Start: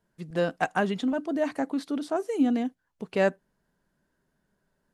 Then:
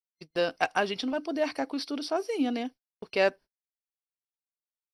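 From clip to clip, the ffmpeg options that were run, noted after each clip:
-af "equalizer=f=180:w=1.5:g=-11.5,agate=range=0.00501:threshold=0.00631:ratio=16:detection=peak,superequalizer=12b=2:13b=1.78:14b=3.98:15b=0.355"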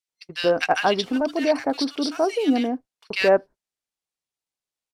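-filter_complex "[0:a]acrusher=bits=8:mode=log:mix=0:aa=0.000001,lowpass=9800,acrossover=split=1500[s0][s1];[s0]adelay=80[s2];[s2][s1]amix=inputs=2:normalize=0,volume=2.51"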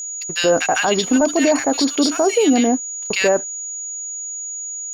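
-af "alimiter=limit=0.15:level=0:latency=1:release=32,aeval=exprs='sgn(val(0))*max(abs(val(0))-0.002,0)':c=same,aeval=exprs='val(0)+0.0178*sin(2*PI*6800*n/s)':c=same,volume=2.82"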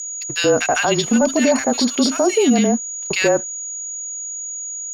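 -af "afreqshift=-29"

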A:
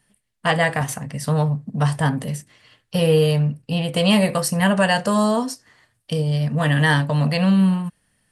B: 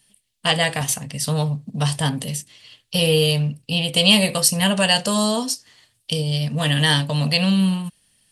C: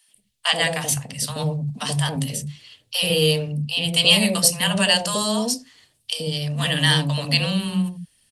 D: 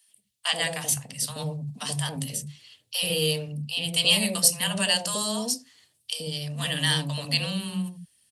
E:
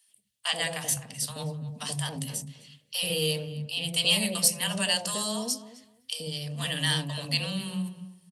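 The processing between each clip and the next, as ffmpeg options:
-af "highshelf=f=2300:t=q:w=1.5:g=9.5,volume=0.794"
-filter_complex "[0:a]acrossover=split=190|700[s0][s1][s2];[s1]adelay=80[s3];[s0]adelay=150[s4];[s4][s3][s2]amix=inputs=3:normalize=0"
-af "highpass=72,highshelf=f=4800:g=7,volume=0.422"
-filter_complex "[0:a]acontrast=24,asplit=2[s0][s1];[s1]adelay=258,lowpass=f=2000:p=1,volume=0.2,asplit=2[s2][s3];[s3]adelay=258,lowpass=f=2000:p=1,volume=0.18[s4];[s0][s2][s4]amix=inputs=3:normalize=0,volume=0.422"

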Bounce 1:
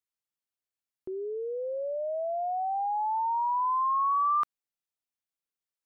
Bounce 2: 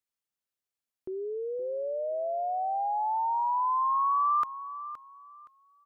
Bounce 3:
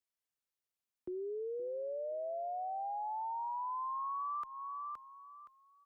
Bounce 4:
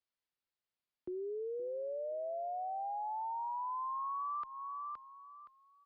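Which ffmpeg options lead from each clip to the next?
-af "aecho=1:1:519|1038|1557:0.211|0.0528|0.0132"
-af "acompressor=threshold=0.02:ratio=6,afreqshift=-13,volume=0.668"
-af "aresample=11025,aresample=44100"

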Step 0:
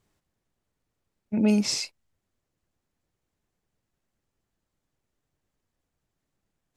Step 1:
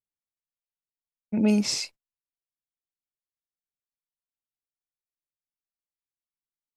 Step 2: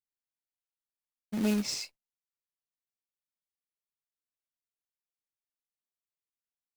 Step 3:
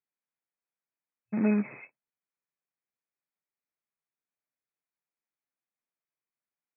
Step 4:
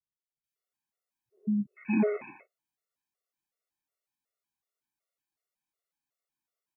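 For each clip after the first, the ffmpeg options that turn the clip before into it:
-af "agate=range=0.0251:threshold=0.00631:ratio=16:detection=peak"
-af "acrusher=bits=3:mode=log:mix=0:aa=0.000001,volume=0.447"
-af "afftfilt=real='re*between(b*sr/4096,110,2600)':imag='im*between(b*sr/4096,110,2600)':win_size=4096:overlap=0.75,volume=1.41"
-filter_complex "[0:a]acrossover=split=190|1900[s0][s1][s2];[s2]adelay=440[s3];[s1]adelay=560[s4];[s0][s4][s3]amix=inputs=3:normalize=0,afftfilt=real='re*gt(sin(2*PI*2.7*pts/sr)*(1-2*mod(floor(b*sr/1024/370),2)),0)':imag='im*gt(sin(2*PI*2.7*pts/sr)*(1-2*mod(floor(b*sr/1024/370),2)),0)':win_size=1024:overlap=0.75,volume=2"

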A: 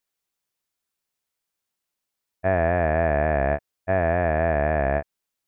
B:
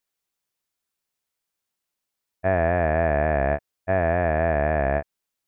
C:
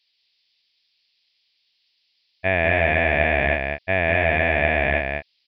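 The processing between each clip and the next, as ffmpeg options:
-af anull
-af "aexciter=amount=13.4:drive=5.1:freq=2100,aecho=1:1:196:0.596,aresample=11025,aresample=44100,volume=0.841"

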